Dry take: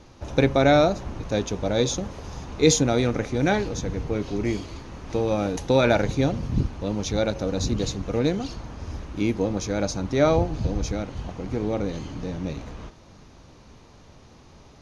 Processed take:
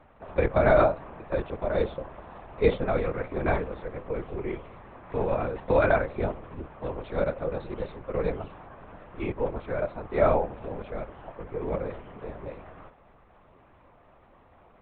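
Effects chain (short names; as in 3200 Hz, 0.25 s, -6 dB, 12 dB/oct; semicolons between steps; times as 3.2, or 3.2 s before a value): three-band isolator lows -22 dB, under 340 Hz, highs -24 dB, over 2200 Hz; LPC vocoder at 8 kHz whisper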